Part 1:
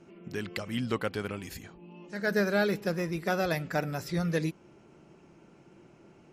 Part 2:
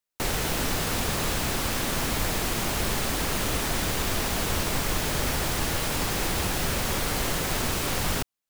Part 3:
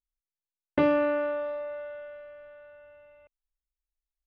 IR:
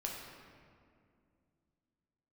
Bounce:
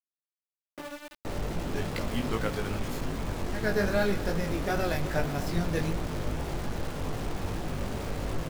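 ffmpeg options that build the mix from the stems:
-filter_complex "[0:a]highpass=f=97:w=0.5412,highpass=f=97:w=1.3066,adelay=1400,volume=-0.5dB,asplit=2[a][b];[b]volume=-8dB[c];[1:a]lowpass=7.9k,tiltshelf=f=1.3k:g=8.5,adelay=1050,volume=-11.5dB,asplit=2[d][e];[e]volume=-5.5dB[f];[2:a]volume=-13.5dB[g];[3:a]atrim=start_sample=2205[h];[c][f]amix=inputs=2:normalize=0[i];[i][h]afir=irnorm=-1:irlink=0[j];[a][d][g][j]amix=inputs=4:normalize=0,flanger=delay=18:depth=3.1:speed=2.5,aeval=exprs='val(0)*gte(abs(val(0)),0.0141)':c=same"

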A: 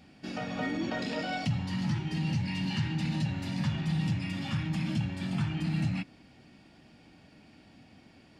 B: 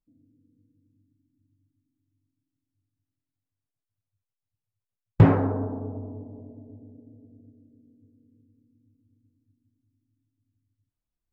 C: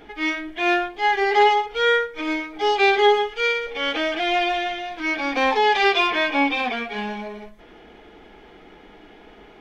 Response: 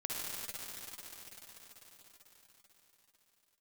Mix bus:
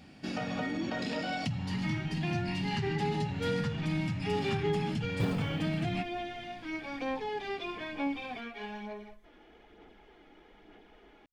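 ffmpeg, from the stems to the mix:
-filter_complex "[0:a]acompressor=threshold=-33dB:ratio=6,volume=2.5dB[a];[1:a]acrusher=bits=6:mode=log:mix=0:aa=0.000001,volume=-17dB[b];[2:a]acrossover=split=480[c][d];[d]acompressor=threshold=-28dB:ratio=6[e];[c][e]amix=inputs=2:normalize=0,aphaser=in_gain=1:out_gain=1:delay=3.6:decay=0.35:speed=1.1:type=sinusoidal,adelay=1650,volume=-12dB[f];[a][b][f]amix=inputs=3:normalize=0"

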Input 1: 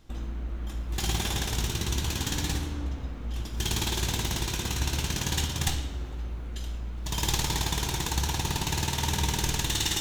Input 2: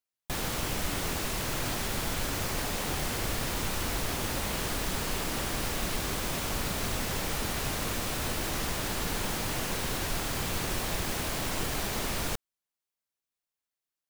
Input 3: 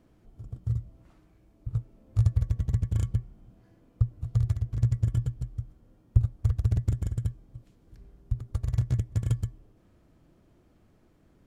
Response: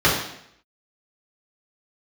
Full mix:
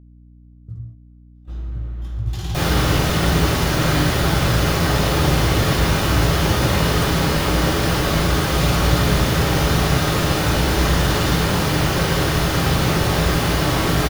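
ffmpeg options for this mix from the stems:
-filter_complex "[0:a]adelay=1350,volume=-10.5dB,asplit=2[a][b];[b]volume=-13.5dB[c];[1:a]adelay=2250,volume=1dB,asplit=2[d][e];[e]volume=-9.5dB[f];[2:a]volume=-15dB,asplit=2[g][h];[h]volume=-15dB[i];[3:a]atrim=start_sample=2205[j];[c][f][i]amix=inputs=3:normalize=0[k];[k][j]afir=irnorm=-1:irlink=0[l];[a][d][g][l]amix=inputs=4:normalize=0,agate=range=-18dB:threshold=-36dB:ratio=16:detection=peak,aeval=exprs='val(0)+0.00631*(sin(2*PI*60*n/s)+sin(2*PI*2*60*n/s)/2+sin(2*PI*3*60*n/s)/3+sin(2*PI*4*60*n/s)/4+sin(2*PI*5*60*n/s)/5)':c=same"

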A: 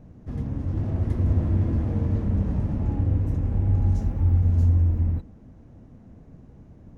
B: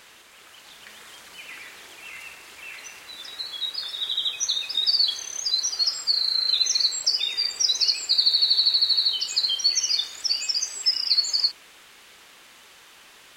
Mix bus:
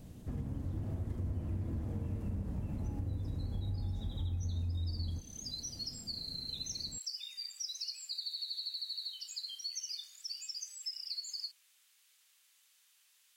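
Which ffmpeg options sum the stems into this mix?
-filter_complex "[0:a]volume=-4dB[a];[1:a]aderivative,volume=-14dB[b];[a][b]amix=inputs=2:normalize=0,acompressor=threshold=-36dB:ratio=4"

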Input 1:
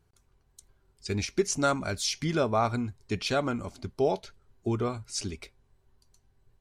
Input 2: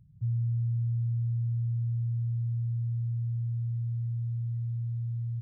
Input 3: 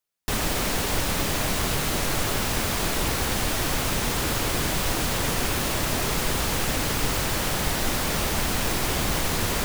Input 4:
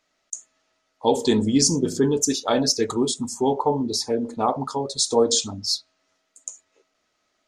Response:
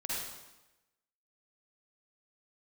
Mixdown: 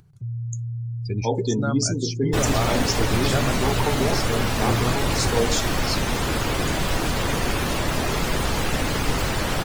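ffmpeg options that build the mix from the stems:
-filter_complex "[0:a]alimiter=limit=-17dB:level=0:latency=1:release=321,equalizer=f=130:t=o:w=0.29:g=12,volume=0.5dB[a];[1:a]highpass=f=79:w=0.5412,highpass=f=79:w=1.3066,volume=-0.5dB[b];[2:a]adelay=2050,volume=2.5dB,asplit=2[c][d];[d]volume=-17.5dB[e];[3:a]adelay=200,volume=-5dB[f];[4:a]atrim=start_sample=2205[g];[e][g]afir=irnorm=-1:irlink=0[h];[a][b][c][f][h]amix=inputs=5:normalize=0,afftdn=nr=27:nf=-30,acompressor=mode=upward:threshold=-32dB:ratio=2.5"

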